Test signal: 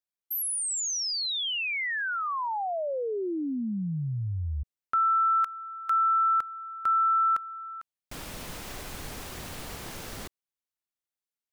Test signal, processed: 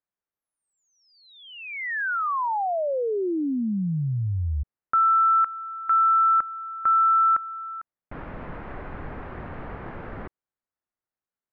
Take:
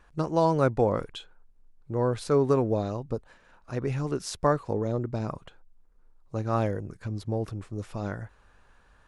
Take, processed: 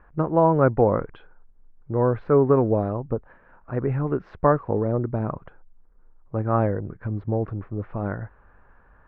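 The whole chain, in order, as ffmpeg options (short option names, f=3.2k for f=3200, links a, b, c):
-af "lowpass=f=1.8k:w=0.5412,lowpass=f=1.8k:w=1.3066,volume=5dB"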